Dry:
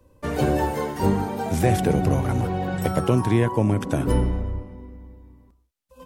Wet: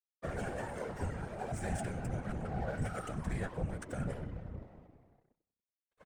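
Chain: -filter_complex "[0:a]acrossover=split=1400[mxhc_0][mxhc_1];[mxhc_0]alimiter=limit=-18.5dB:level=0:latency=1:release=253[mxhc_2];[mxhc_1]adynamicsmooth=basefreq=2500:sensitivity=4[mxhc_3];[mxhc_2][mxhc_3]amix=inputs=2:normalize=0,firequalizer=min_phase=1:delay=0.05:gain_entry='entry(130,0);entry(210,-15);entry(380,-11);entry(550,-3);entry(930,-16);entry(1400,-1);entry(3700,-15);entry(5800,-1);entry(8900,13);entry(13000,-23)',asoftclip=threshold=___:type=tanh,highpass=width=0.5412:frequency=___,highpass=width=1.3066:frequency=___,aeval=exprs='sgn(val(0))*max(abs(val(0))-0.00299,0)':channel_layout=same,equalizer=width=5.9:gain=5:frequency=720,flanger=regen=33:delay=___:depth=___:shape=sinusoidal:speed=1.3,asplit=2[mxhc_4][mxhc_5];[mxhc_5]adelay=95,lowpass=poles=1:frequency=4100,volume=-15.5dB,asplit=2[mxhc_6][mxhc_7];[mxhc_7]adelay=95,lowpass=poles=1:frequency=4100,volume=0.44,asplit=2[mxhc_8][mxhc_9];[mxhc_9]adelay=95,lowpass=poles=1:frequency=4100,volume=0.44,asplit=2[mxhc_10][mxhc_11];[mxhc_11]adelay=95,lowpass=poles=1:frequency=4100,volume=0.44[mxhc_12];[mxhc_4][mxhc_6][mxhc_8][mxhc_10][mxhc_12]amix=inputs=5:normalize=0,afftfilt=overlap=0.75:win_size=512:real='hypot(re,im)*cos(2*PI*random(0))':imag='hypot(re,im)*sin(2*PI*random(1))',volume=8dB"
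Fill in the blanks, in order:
-27dB, 86, 86, 3, 9.6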